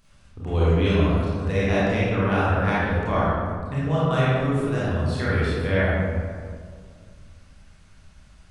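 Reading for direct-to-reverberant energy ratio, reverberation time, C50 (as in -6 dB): -9.5 dB, 2.0 s, -5.0 dB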